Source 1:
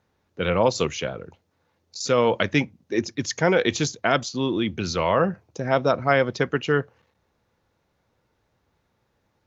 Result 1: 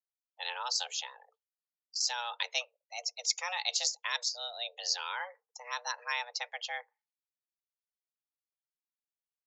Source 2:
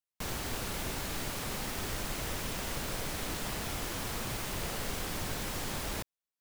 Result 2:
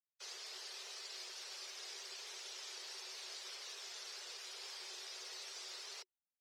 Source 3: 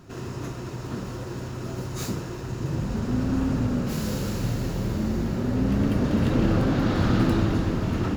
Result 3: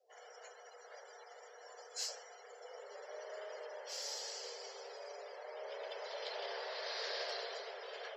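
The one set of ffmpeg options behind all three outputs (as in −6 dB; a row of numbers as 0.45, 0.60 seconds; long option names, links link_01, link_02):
-af "afftdn=noise_reduction=29:noise_floor=-44,afreqshift=360,bandpass=frequency=5100:width_type=q:width=2.3:csg=0,volume=2.5dB"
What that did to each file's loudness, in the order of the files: −11.0, −10.5, −18.5 LU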